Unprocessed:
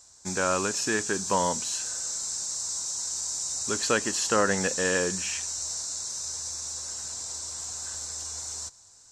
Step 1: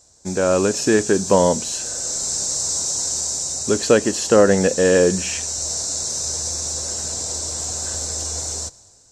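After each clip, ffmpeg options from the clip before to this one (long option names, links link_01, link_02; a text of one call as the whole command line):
ffmpeg -i in.wav -af "lowshelf=frequency=780:width_type=q:width=1.5:gain=7.5,dynaudnorm=framelen=130:gausssize=9:maxgain=9.5dB" out.wav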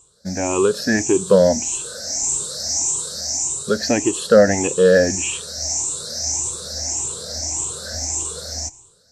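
ffmpeg -i in.wav -af "afftfilt=real='re*pow(10,19/40*sin(2*PI*(0.67*log(max(b,1)*sr/1024/100)/log(2)-(1.7)*(pts-256)/sr)))':imag='im*pow(10,19/40*sin(2*PI*(0.67*log(max(b,1)*sr/1024/100)/log(2)-(1.7)*(pts-256)/sr)))':win_size=1024:overlap=0.75,volume=-4dB" out.wav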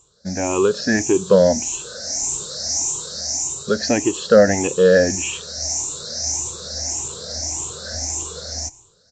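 ffmpeg -i in.wav -af "aresample=16000,aresample=44100" out.wav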